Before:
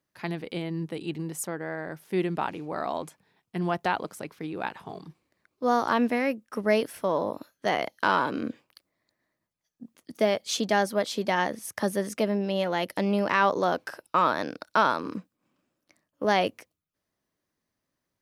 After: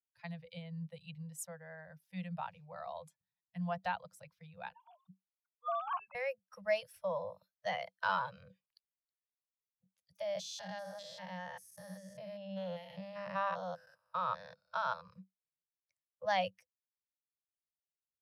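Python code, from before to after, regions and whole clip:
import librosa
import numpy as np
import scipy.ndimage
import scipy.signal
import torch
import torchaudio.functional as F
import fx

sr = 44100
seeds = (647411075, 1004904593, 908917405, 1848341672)

y = fx.chain(x, sr, fx.sine_speech(),
    fx.fixed_phaser(hz=1900.0, stages=6), at=(4.73, 6.15))
y = fx.chain(y, sr, fx.spec_steps(hold_ms=200),
    fx.high_shelf(hz=11000.0, db=3.0),
    fx.hum_notches(base_hz=50, count=8), at=(10.2, 15.01))
y = fx.bin_expand(y, sr, power=1.5)
y = scipy.signal.sosfilt(scipy.signal.cheby1(5, 1.0, [190.0, 500.0], 'bandstop', fs=sr, output='sos'), y)
y = fx.high_shelf(y, sr, hz=9900.0, db=-7.0)
y = F.gain(torch.from_numpy(y), -6.0).numpy()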